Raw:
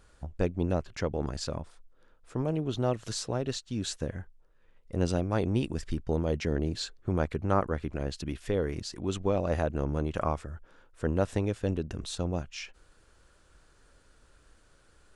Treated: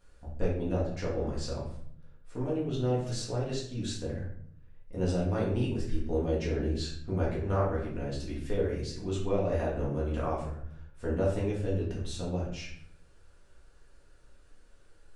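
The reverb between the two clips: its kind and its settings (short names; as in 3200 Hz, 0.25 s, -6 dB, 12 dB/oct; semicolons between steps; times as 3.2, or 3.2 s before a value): shoebox room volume 110 m³, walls mixed, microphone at 1.8 m; gain -10 dB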